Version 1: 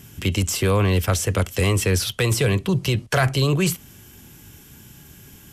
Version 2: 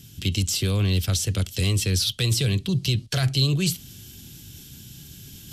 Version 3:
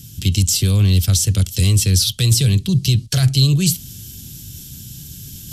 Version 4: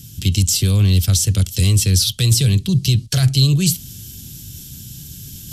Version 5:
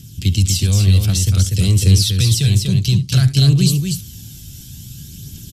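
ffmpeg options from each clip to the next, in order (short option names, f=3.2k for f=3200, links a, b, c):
-af "equalizer=f=125:t=o:w=1:g=3,equalizer=f=500:t=o:w=1:g=-6,equalizer=f=1k:t=o:w=1:g=-11,equalizer=f=2k:t=o:w=1:g=-6,equalizer=f=4k:t=o:w=1:g=10,areverse,acompressor=mode=upward:threshold=-32dB:ratio=2.5,areverse,volume=-3.5dB"
-af "bass=f=250:g=9,treble=f=4k:g=10"
-af anull
-af "highshelf=f=9.8k:g=-6.5,aecho=1:1:72|243:0.15|0.596,aphaser=in_gain=1:out_gain=1:delay=1.6:decay=0.3:speed=0.56:type=triangular,volume=-1.5dB"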